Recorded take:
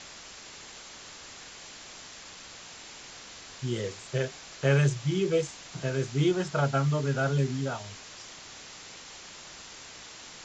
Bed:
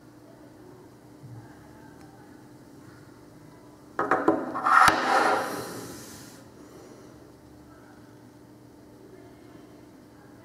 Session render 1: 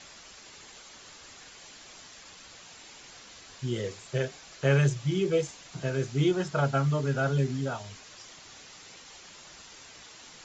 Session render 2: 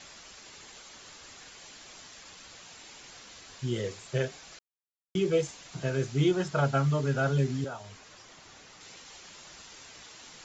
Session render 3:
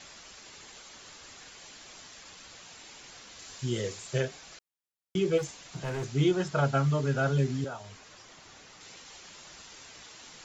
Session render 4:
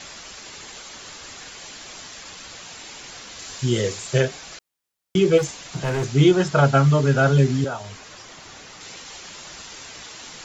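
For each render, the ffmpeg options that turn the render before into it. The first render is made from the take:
ffmpeg -i in.wav -af "afftdn=noise_reduction=6:noise_floor=-47" out.wav
ffmpeg -i in.wav -filter_complex "[0:a]asettb=1/sr,asplit=3[link_01][link_02][link_03];[link_01]atrim=end=7.644[link_04];[link_02]atrim=start=7.64:end=8.81,asetpts=PTS-STARTPTS,afade=type=in:duration=0.004:curve=qsin,afade=type=out:start_time=1.166:duration=0.004:curve=qsin,acrossover=split=330|2000|4300[link_05][link_06][link_07][link_08];[link_05]acompressor=threshold=-47dB:ratio=3[link_09];[link_06]acompressor=threshold=-37dB:ratio=3[link_10];[link_07]acompressor=threshold=-60dB:ratio=3[link_11];[link_08]acompressor=threshold=-58dB:ratio=3[link_12];[link_09][link_10][link_11][link_12]amix=inputs=4:normalize=0[link_13];[link_03]atrim=start=8.806[link_14];[link_04][link_13]acrossfade=duration=0.004:curve1=hsin:curve2=qsin[link_15];[link_15][link_14]acrossfade=duration=0.004:curve1=qsin:curve2=hsin,asplit=3[link_16][link_17][link_18];[link_16]atrim=end=4.59,asetpts=PTS-STARTPTS,afade=type=out:start_time=4.586:duration=0.004:curve=hsin[link_19];[link_17]atrim=start=4.59:end=5.15,asetpts=PTS-STARTPTS,volume=0[link_20];[link_18]atrim=start=5.15,asetpts=PTS-STARTPTS,afade=type=in:duration=0.004:curve=hsin[link_21];[link_19][link_20][link_21]concat=n=3:v=0:a=1" out.wav
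ffmpeg -i in.wav -filter_complex "[0:a]asettb=1/sr,asplit=3[link_01][link_02][link_03];[link_01]atrim=end=3.394[link_04];[link_02]atrim=start=3.39:end=4.21,asetpts=PTS-STARTPTS,afade=type=in:duration=0.004:curve=qsin,afade=type=out:start_time=0.816:duration=0.004:curve=qsin,highshelf=frequency=6300:gain=10[link_05];[link_03]atrim=start=4.206[link_06];[link_04][link_05]acrossfade=duration=0.004:curve1=hsin:curve2=qsin[link_07];[link_07][link_06]acrossfade=duration=0.004:curve1=qsin:curve2=hsin,asplit=3[link_08][link_09][link_10];[link_08]afade=type=out:start_time=5.37:duration=0.02[link_11];[link_09]asoftclip=type=hard:threshold=-30dB,afade=type=in:start_time=5.37:duration=0.02,afade=type=out:start_time=6.04:duration=0.02[link_12];[link_10]afade=type=in:start_time=6.04:duration=0.02[link_13];[link_11][link_12][link_13]amix=inputs=3:normalize=0" out.wav
ffmpeg -i in.wav -af "volume=10dB" out.wav

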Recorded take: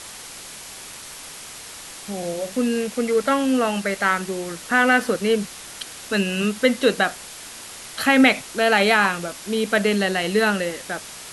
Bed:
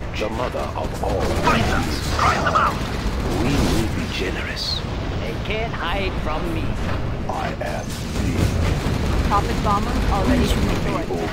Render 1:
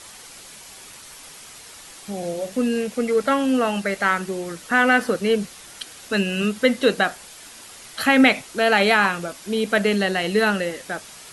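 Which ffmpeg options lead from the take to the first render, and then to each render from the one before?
ffmpeg -i in.wav -af "afftdn=noise_reduction=6:noise_floor=-39" out.wav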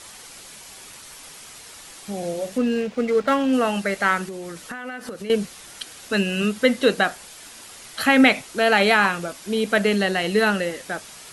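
ffmpeg -i in.wav -filter_complex "[0:a]asettb=1/sr,asplit=3[link_01][link_02][link_03];[link_01]atrim=end=2.584[link_04];[link_02]atrim=start=2.58:end=3.53,asetpts=PTS-STARTPTS,afade=type=in:duration=0.004:curve=qsin,afade=type=out:start_time=0.946:duration=0.004:curve=qsin,adynamicsmooth=sensitivity=6:basefreq=3100[link_05];[link_03]atrim=start=3.526[link_06];[link_04][link_05]acrossfade=duration=0.004:curve1=hsin:curve2=qsin[link_07];[link_07][link_06]acrossfade=duration=0.004:curve1=qsin:curve2=hsin,asettb=1/sr,asplit=3[link_08][link_09][link_10];[link_08]atrim=end=4.284[link_11];[link_09]atrim=start=4.28:end=5.3,asetpts=PTS-STARTPTS,afade=type=in:duration=0.004:curve=qsin,afade=type=out:start_time=1.016:duration=0.004:curve=qsin,acompressor=threshold=-29dB:ratio=12:attack=3.2:release=140:knee=1:detection=peak[link_12];[link_10]atrim=start=5.296[link_13];[link_11][link_12]acrossfade=duration=0.004:curve1=hsin:curve2=qsin[link_14];[link_14][link_13]acrossfade=duration=0.004:curve1=qsin:curve2=hsin" out.wav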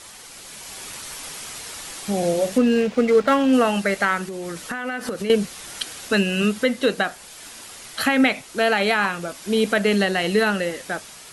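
ffmpeg -i in.wav -af "dynaudnorm=framelen=140:gausssize=9:maxgain=7dB,alimiter=limit=-8dB:level=0:latency=1:release=452" out.wav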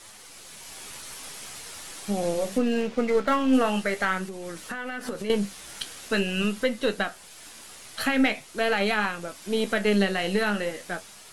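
ffmpeg -i in.wav -af "aeval=exprs='if(lt(val(0),0),0.708*val(0),val(0))':channel_layout=same,flanger=delay=9.3:depth=6.2:regen=57:speed=0.44:shape=sinusoidal" out.wav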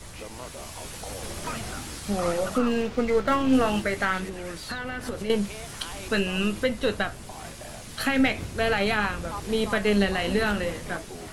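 ffmpeg -i in.wav -i bed.wav -filter_complex "[1:a]volume=-16.5dB[link_01];[0:a][link_01]amix=inputs=2:normalize=0" out.wav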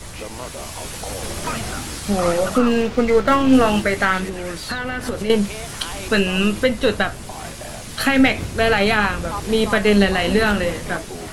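ffmpeg -i in.wav -af "volume=7.5dB" out.wav

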